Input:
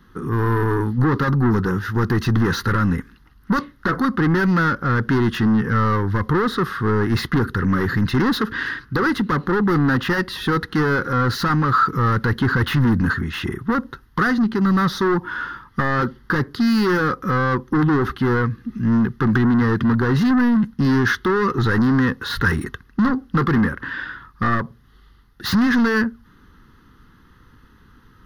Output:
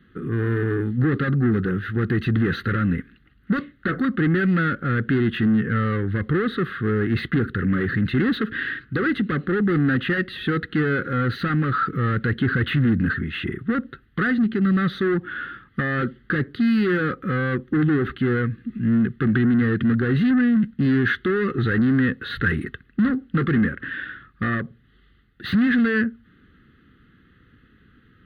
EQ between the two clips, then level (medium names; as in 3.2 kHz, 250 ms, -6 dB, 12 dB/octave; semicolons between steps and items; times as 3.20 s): Savitzky-Golay filter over 15 samples; high-pass 110 Hz 6 dB/octave; static phaser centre 2.3 kHz, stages 4; 0.0 dB